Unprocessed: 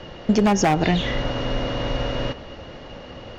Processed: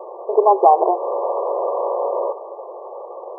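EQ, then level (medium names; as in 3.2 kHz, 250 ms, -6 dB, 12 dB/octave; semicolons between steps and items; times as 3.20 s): brick-wall FIR band-pass 350–1200 Hz; peaking EQ 940 Hz +4 dB 1.8 oct; +6.0 dB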